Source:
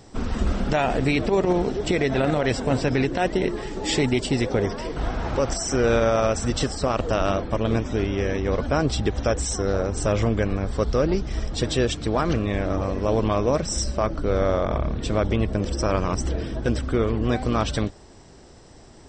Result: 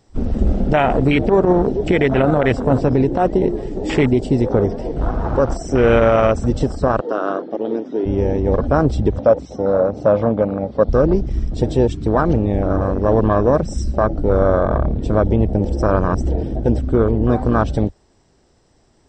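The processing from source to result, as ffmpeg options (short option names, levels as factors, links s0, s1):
-filter_complex "[0:a]asplit=3[s0][s1][s2];[s0]afade=t=out:st=6.99:d=0.02[s3];[s1]highpass=f=280:w=0.5412,highpass=f=280:w=1.3066,equalizer=f=600:t=q:w=4:g=-6,equalizer=f=870:t=q:w=4:g=-7,equalizer=f=2400:t=q:w=4:g=-8,lowpass=f=5100:w=0.5412,lowpass=f=5100:w=1.3066,afade=t=in:st=6.99:d=0.02,afade=t=out:st=8.05:d=0.02[s4];[s2]afade=t=in:st=8.05:d=0.02[s5];[s3][s4][s5]amix=inputs=3:normalize=0,asettb=1/sr,asplit=3[s6][s7][s8];[s6]atrim=end=9.184[s9];[s7]atrim=start=9.18:end=10.89,asetpts=PTS-STARTPTS,afade=t=in:d=0.004:c=qsin,afade=t=out:st=1.706:d=0.004:c=qsin,highpass=160,equalizer=f=380:t=q:w=4:g=-8,equalizer=f=560:t=q:w=4:g=7,equalizer=f=1700:t=q:w=4:g=-8,equalizer=f=3000:t=q:w=4:g=-3,lowpass=f=4600:w=0.5412,lowpass=f=4600:w=1.3066[s10];[s8]atrim=start=10.886[s11];[s9][s10]acrossfade=d=0.004:c1=hsin:c2=qsin[s12];[s12][s11]acrossfade=d=0.004:c1=qsin:c2=hsin,afwtdn=0.0447,volume=2.24"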